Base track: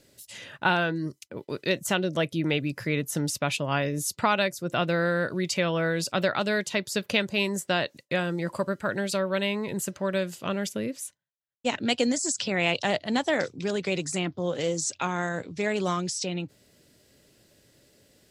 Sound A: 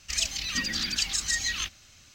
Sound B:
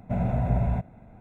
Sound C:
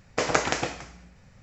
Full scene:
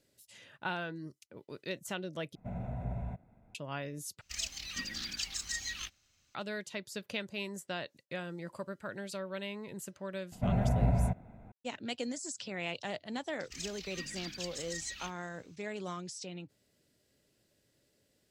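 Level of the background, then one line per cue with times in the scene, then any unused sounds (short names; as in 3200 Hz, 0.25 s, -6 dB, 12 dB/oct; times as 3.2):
base track -13 dB
2.35 replace with B -13.5 dB
4.21 replace with A -9 dB + G.711 law mismatch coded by A
10.32 add B -3.5 dB
13.42 add A -15 dB
not used: C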